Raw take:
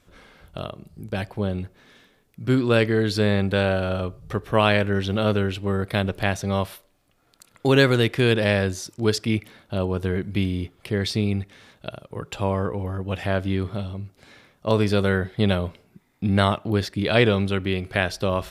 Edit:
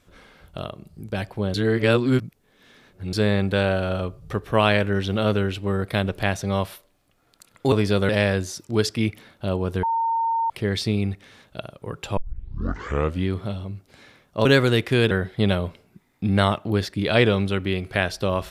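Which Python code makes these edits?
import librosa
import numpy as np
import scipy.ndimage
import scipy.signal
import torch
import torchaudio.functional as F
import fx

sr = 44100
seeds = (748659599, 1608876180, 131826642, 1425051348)

y = fx.edit(x, sr, fx.reverse_span(start_s=1.54, length_s=1.59),
    fx.swap(start_s=7.72, length_s=0.66, other_s=14.74, other_length_s=0.37),
    fx.bleep(start_s=10.12, length_s=0.67, hz=913.0, db=-19.5),
    fx.tape_start(start_s=12.46, length_s=1.09), tone=tone)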